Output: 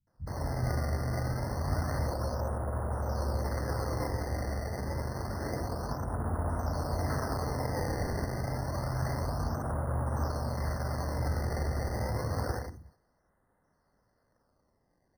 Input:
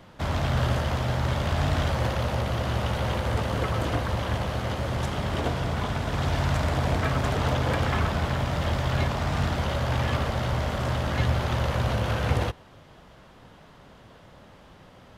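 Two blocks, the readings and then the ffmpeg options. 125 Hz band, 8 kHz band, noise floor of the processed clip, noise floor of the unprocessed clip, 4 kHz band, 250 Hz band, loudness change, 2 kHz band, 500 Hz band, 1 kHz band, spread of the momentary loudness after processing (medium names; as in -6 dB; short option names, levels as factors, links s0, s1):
-7.0 dB, -4.5 dB, -74 dBFS, -51 dBFS, -14.0 dB, -6.5 dB, -7.0 dB, -11.0 dB, -6.0 dB, -7.0 dB, 3 LU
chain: -filter_complex "[0:a]asplit=2[s0][s1];[s1]aecho=0:1:56|96|183|187|369|382:0.501|0.376|0.2|0.501|0.141|0.133[s2];[s0][s2]amix=inputs=2:normalize=0,aresample=8000,aresample=44100,afwtdn=0.0447,acrusher=samples=19:mix=1:aa=0.000001:lfo=1:lforange=30.4:lforate=0.28,acrossover=split=160[s3][s4];[s4]adelay=70[s5];[s3][s5]amix=inputs=2:normalize=0,afftfilt=real='re*eq(mod(floor(b*sr/1024/2100),2),0)':imag='im*eq(mod(floor(b*sr/1024/2100),2),0)':win_size=1024:overlap=0.75,volume=0.422"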